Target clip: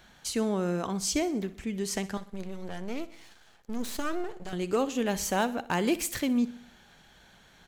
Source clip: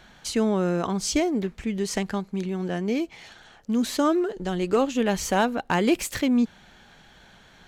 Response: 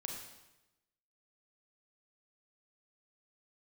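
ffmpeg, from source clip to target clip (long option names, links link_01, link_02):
-filter_complex "[0:a]highshelf=frequency=8300:gain=10,asettb=1/sr,asplit=3[link_01][link_02][link_03];[link_01]atrim=end=2.174[link_04];[link_02]atrim=start=2.17:end=4.53,asetpts=PTS-STARTPTS,afade=type=in:duration=0.004:curve=qsin,afade=type=out:start_time=2.356:duration=0.004:curve=qsin,aeval=exprs='max(val(0),0)':channel_layout=same[link_05];[link_03]atrim=start=4.526[link_06];[link_04][link_05]acrossfade=duration=0.004:curve1=hsin:curve2=qsin[link_07];[link_07][link_06]acrossfade=duration=0.004:curve1=qsin:curve2=hsin,aecho=1:1:62|124|186|248|310:0.141|0.0735|0.0382|0.0199|0.0103,volume=-5.5dB"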